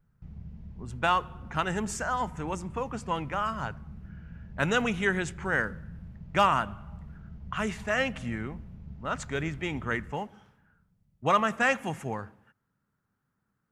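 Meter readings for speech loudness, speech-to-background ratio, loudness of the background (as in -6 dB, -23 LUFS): -30.0 LUFS, 15.5 dB, -45.5 LUFS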